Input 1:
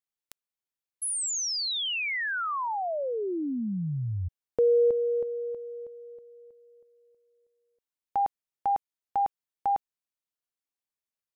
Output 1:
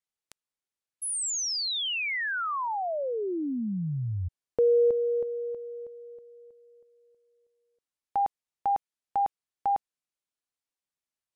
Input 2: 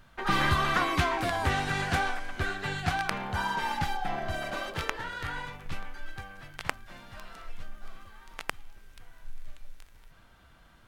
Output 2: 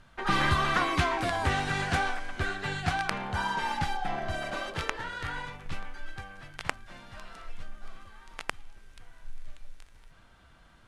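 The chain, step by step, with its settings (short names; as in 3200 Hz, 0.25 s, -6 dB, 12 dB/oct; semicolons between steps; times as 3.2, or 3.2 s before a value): LPF 11000 Hz 24 dB/oct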